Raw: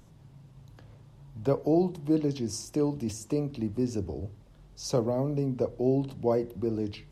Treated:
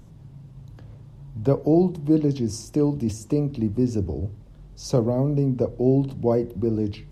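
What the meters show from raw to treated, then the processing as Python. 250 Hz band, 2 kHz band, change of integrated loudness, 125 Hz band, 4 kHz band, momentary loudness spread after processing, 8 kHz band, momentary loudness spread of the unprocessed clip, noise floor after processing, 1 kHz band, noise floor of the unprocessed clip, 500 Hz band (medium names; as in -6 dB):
+6.5 dB, no reading, +6.5 dB, +8.5 dB, +1.0 dB, 8 LU, +1.0 dB, 9 LU, -46 dBFS, +3.0 dB, -55 dBFS, +5.0 dB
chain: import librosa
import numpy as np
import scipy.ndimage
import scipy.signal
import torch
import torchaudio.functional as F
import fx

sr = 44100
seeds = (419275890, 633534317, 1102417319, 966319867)

y = fx.low_shelf(x, sr, hz=400.0, db=8.5)
y = F.gain(torch.from_numpy(y), 1.0).numpy()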